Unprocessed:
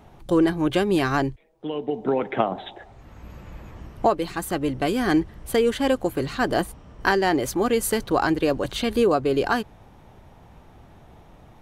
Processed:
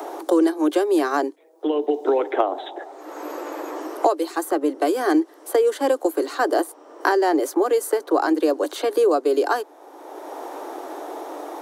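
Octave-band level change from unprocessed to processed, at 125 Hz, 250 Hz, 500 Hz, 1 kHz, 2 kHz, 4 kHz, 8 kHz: under -30 dB, +1.0 dB, +3.5 dB, +2.5 dB, -1.5 dB, -3.5 dB, -1.0 dB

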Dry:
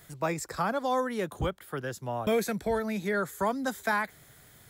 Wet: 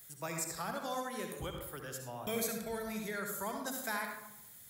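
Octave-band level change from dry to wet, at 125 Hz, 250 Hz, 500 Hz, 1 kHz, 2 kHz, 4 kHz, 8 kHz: -9.5, -9.5, -10.5, -9.5, -8.0, -3.0, +2.0 dB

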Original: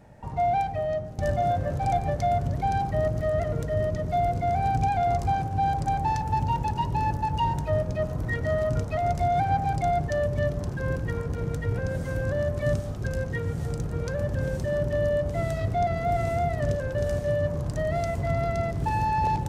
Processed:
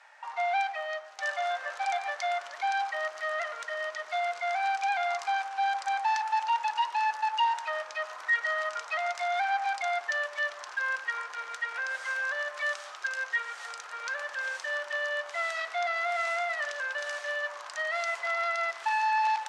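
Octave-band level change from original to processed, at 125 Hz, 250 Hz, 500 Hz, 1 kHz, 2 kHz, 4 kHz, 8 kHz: under -40 dB, under -40 dB, -9.5 dB, -2.5 dB, +8.5 dB, +6.5 dB, +1.5 dB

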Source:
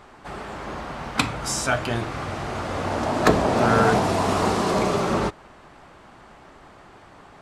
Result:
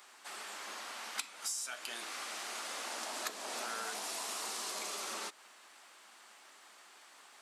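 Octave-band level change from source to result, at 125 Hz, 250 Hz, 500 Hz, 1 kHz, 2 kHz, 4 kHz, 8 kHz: under -40 dB, -31.5 dB, -25.5 dB, -20.0 dB, -15.0 dB, -8.5 dB, -5.5 dB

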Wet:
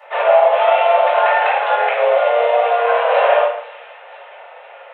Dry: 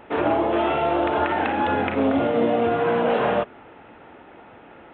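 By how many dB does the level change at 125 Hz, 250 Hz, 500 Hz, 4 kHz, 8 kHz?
under -40 dB, under -30 dB, +8.0 dB, +7.5 dB, n/a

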